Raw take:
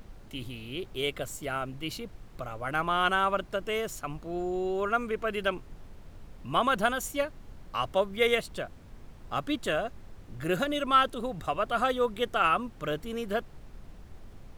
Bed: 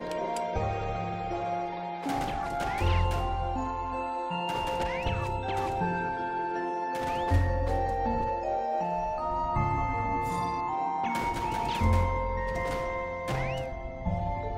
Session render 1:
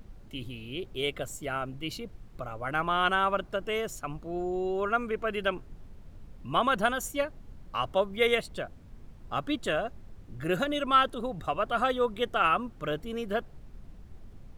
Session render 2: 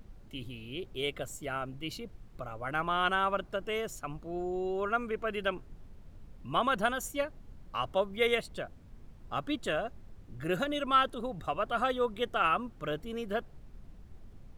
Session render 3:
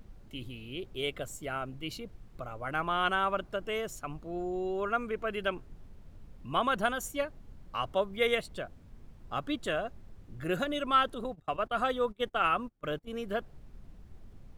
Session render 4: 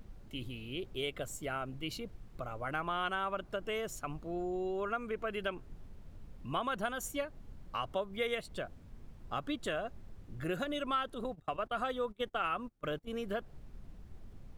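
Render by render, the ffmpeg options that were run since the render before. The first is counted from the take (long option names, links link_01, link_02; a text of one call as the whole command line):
ffmpeg -i in.wav -af "afftdn=noise_reduction=6:noise_floor=-49" out.wav
ffmpeg -i in.wav -af "volume=-3dB" out.wav
ffmpeg -i in.wav -filter_complex "[0:a]asettb=1/sr,asplit=3[link_01][link_02][link_03];[link_01]atrim=end=11.244[link_04];[link_02]atrim=start=11.24:end=13.15,asetpts=PTS-STARTPTS,afade=type=in:duration=0.004:curve=qsin,afade=type=out:start_time=1.906:duration=0.004:curve=qsin,agate=range=-25dB:threshold=-40dB:ratio=16:release=100:detection=peak[link_05];[link_03]atrim=start=13.146[link_06];[link_04][link_05]acrossfade=duration=0.004:curve1=hsin:curve2=qsin[link_07];[link_07][link_06]acrossfade=duration=0.004:curve1=qsin:curve2=hsin" out.wav
ffmpeg -i in.wav -af "acompressor=threshold=-34dB:ratio=2.5" out.wav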